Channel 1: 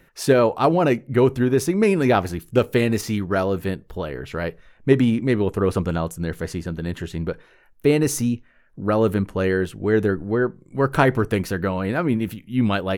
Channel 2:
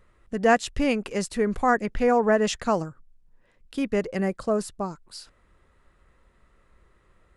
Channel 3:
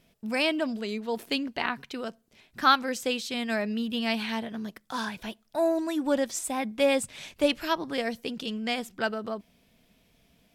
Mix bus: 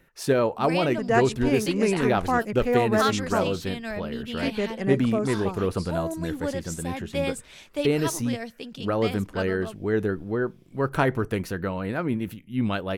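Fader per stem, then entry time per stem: -5.5 dB, -3.0 dB, -4.5 dB; 0.00 s, 0.65 s, 0.35 s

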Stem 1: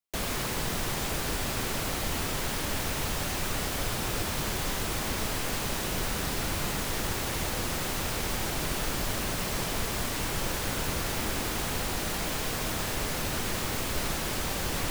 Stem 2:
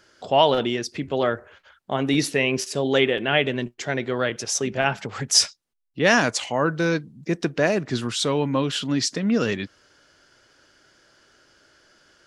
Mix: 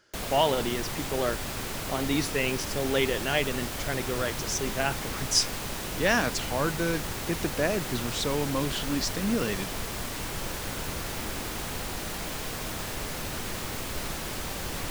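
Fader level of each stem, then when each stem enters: -3.0 dB, -6.5 dB; 0.00 s, 0.00 s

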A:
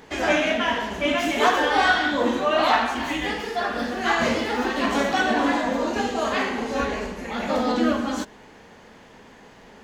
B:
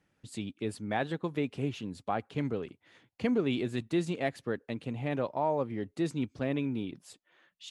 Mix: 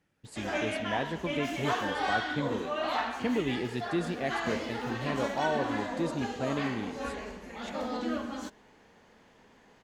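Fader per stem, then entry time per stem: -11.5 dB, -1.5 dB; 0.25 s, 0.00 s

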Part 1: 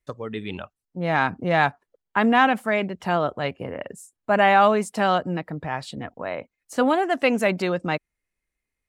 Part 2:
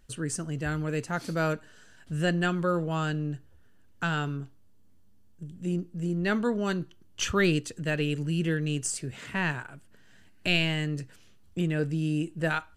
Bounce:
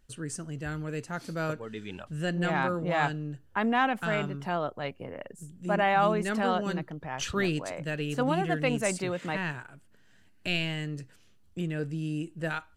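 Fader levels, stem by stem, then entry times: -8.0 dB, -4.5 dB; 1.40 s, 0.00 s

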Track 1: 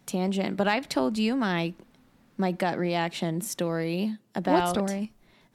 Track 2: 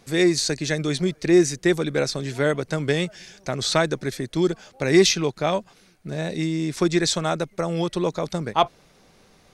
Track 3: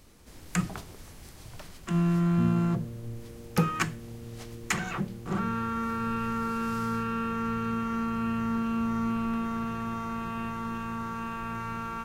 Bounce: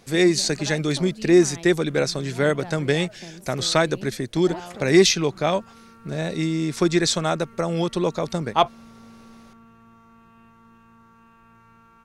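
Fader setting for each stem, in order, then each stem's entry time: -12.5 dB, +1.0 dB, -18.5 dB; 0.00 s, 0.00 s, 0.00 s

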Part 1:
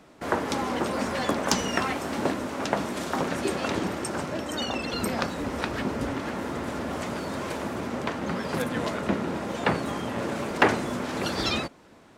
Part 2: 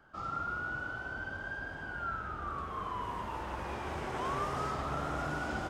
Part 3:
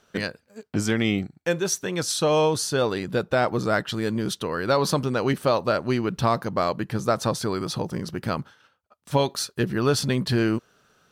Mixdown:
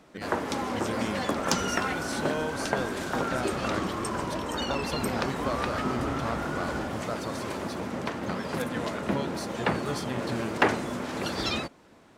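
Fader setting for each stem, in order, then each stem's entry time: -2.5 dB, +1.0 dB, -12.5 dB; 0.00 s, 1.20 s, 0.00 s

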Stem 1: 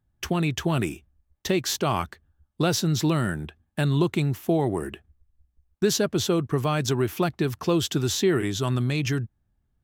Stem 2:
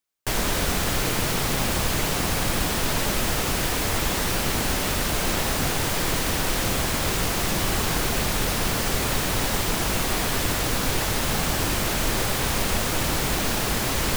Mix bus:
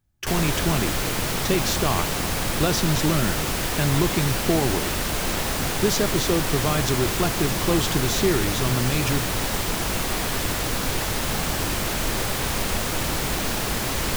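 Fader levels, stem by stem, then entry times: 0.0 dB, -1.0 dB; 0.00 s, 0.00 s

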